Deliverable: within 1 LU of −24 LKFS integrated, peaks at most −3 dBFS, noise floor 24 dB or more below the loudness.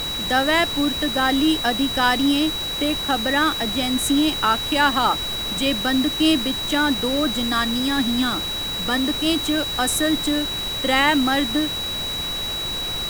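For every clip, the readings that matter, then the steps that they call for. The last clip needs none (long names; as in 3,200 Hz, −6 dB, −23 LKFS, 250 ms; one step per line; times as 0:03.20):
interfering tone 3,900 Hz; level of the tone −25 dBFS; background noise floor −27 dBFS; target noise floor −44 dBFS; integrated loudness −20.0 LKFS; sample peak −3.5 dBFS; target loudness −24.0 LKFS
→ notch filter 3,900 Hz, Q 30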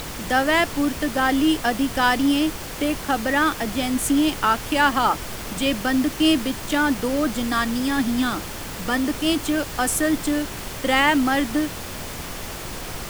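interfering tone none found; background noise floor −33 dBFS; target noise floor −46 dBFS
→ noise reduction from a noise print 13 dB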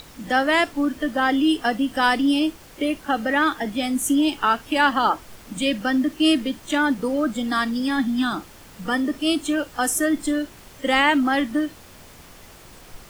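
background noise floor −46 dBFS; integrated loudness −22.0 LKFS; sample peak −4.5 dBFS; target loudness −24.0 LKFS
→ level −2 dB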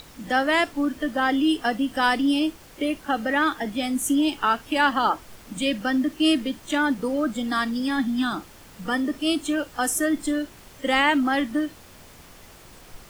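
integrated loudness −24.0 LKFS; sample peak −6.5 dBFS; background noise floor −48 dBFS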